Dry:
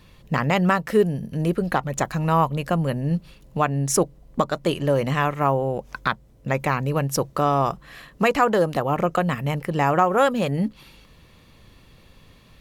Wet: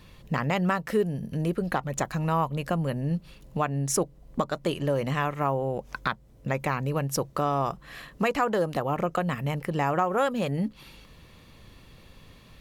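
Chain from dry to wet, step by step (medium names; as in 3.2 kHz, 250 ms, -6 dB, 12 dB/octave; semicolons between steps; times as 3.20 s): compression 1.5:1, threshold -32 dBFS, peak gain reduction 7 dB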